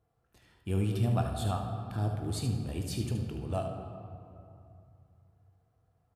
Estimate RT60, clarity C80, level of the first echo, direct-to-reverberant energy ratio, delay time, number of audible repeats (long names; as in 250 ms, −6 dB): 2.6 s, 6.0 dB, −8.5 dB, 2.0 dB, 74 ms, 1